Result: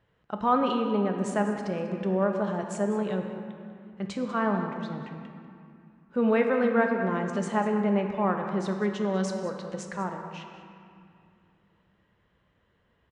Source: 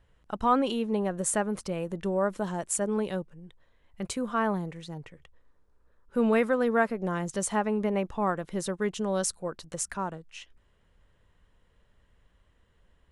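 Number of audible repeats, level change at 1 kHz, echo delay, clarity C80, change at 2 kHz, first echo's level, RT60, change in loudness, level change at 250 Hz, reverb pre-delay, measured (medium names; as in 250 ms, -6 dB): 1, +1.5 dB, 194 ms, 5.5 dB, +1.0 dB, -14.0 dB, 2.5 s, +1.0 dB, +2.5 dB, 4 ms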